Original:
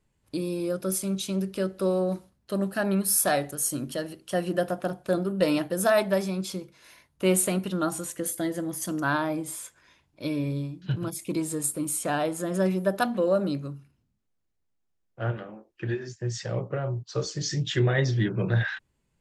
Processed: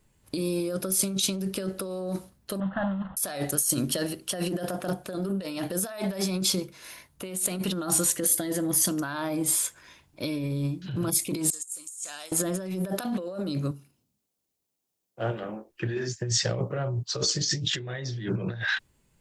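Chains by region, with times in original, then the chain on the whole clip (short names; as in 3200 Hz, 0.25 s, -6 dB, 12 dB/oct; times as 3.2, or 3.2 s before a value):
2.6–3.17 CVSD 16 kbps + fixed phaser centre 980 Hz, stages 4
11.5–12.32 band-pass 7000 Hz, Q 4.2 + negative-ratio compressor -45 dBFS, ratio -0.5
13.71–15.43 HPF 380 Hz 6 dB/oct + bell 1600 Hz -8.5 dB 1.4 oct
whole clip: dynamic EQ 4400 Hz, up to +5 dB, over -47 dBFS, Q 1.1; negative-ratio compressor -32 dBFS, ratio -1; high shelf 7700 Hz +8 dB; gain +2 dB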